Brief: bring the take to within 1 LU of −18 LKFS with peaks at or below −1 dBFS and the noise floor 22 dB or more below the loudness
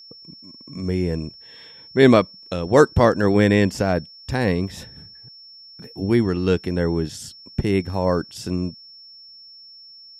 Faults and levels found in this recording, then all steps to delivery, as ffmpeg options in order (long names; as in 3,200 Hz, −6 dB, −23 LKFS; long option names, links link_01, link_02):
interfering tone 5,400 Hz; level of the tone −42 dBFS; integrated loudness −20.5 LKFS; sample peak −1.0 dBFS; target loudness −18.0 LKFS
→ -af "bandreject=frequency=5400:width=30"
-af "volume=2.5dB,alimiter=limit=-1dB:level=0:latency=1"